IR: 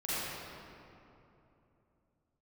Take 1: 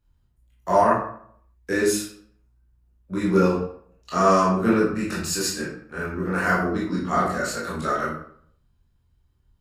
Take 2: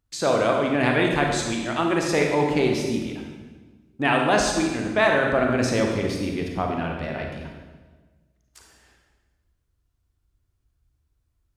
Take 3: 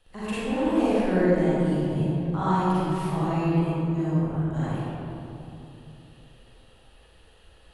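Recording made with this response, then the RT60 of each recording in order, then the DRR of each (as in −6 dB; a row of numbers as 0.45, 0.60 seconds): 3; 0.60, 1.3, 3.0 seconds; −7.5, 1.0, −12.5 decibels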